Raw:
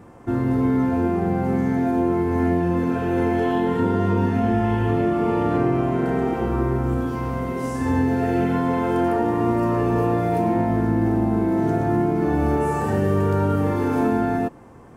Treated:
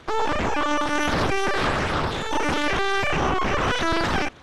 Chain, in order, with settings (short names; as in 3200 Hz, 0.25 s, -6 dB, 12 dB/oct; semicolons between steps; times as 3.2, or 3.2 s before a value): LPC vocoder at 8 kHz pitch kept; wide varispeed 3.38×; gain -2 dB